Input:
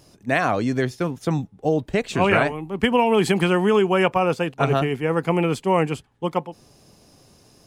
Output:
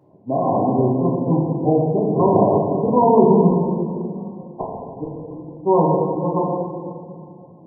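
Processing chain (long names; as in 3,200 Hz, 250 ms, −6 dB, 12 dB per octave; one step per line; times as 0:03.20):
high-pass filter 110 Hz 24 dB per octave
0:03.49–0:05.64: gate with flip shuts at −14 dBFS, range −25 dB
linear-phase brick-wall low-pass 1,100 Hz
convolution reverb RT60 2.2 s, pre-delay 6 ms, DRR −5.5 dB
level −2 dB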